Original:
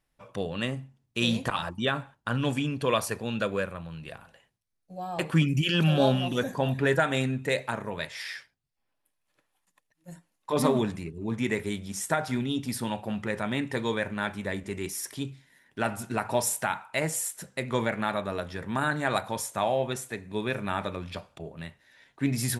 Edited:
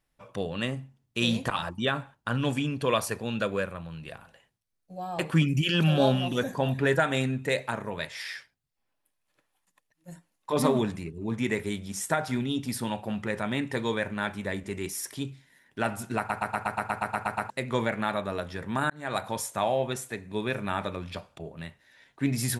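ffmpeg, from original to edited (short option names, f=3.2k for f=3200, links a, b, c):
-filter_complex "[0:a]asplit=13[a][b][c][d][e][f][g][h][i][j][k][l][m];[a]atrim=end=16.302[n];[b]atrim=start=16.178:end=16.302[o];[c]atrim=start=16.178:end=16.302[p];[d]atrim=start=16.178:end=16.302[q];[e]atrim=start=16.178:end=16.302[r];[f]atrim=start=16.178:end=16.302[s];[g]atrim=start=16.178:end=16.302[t];[h]atrim=start=16.178:end=16.302[u];[i]atrim=start=16.178:end=16.302[v];[j]atrim=start=16.178:end=16.302[w];[k]atrim=start=16.178:end=16.302[x];[l]atrim=start=17.498:end=18.9,asetpts=PTS-STARTPTS,afade=t=out:st=1.398:d=0.004:c=hsin[y];[m]atrim=start=18.9,asetpts=PTS-STARTPTS,afade=t=in:d=0.35[z];[n][o]acrossfade=d=0.004:c1=hsin:c2=hsin[aa];[aa][p]acrossfade=d=0.004:c1=hsin:c2=hsin[ab];[ab][q]acrossfade=d=0.004:c1=hsin:c2=hsin[ac];[ac][r]acrossfade=d=0.004:c1=hsin:c2=hsin[ad];[ad][s]acrossfade=d=0.004:c1=hsin:c2=hsin[ae];[ae][t]acrossfade=d=0.004:c1=hsin:c2=hsin[af];[af][u]acrossfade=d=0.004:c1=hsin:c2=hsin[ag];[ag][v]acrossfade=d=0.004:c1=hsin:c2=hsin[ah];[ah][w]acrossfade=d=0.004:c1=hsin:c2=hsin[ai];[ai][x]acrossfade=d=0.004:c1=hsin:c2=hsin[aj];[y][z]concat=n=2:v=0:a=1[ak];[aj][ak]acrossfade=d=0.004:c1=hsin:c2=hsin"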